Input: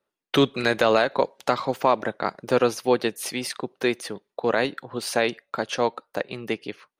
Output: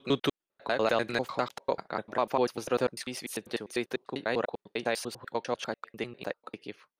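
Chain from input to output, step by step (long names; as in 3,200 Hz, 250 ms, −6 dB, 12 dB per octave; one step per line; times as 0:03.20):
slices reordered back to front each 99 ms, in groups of 6
level −7.5 dB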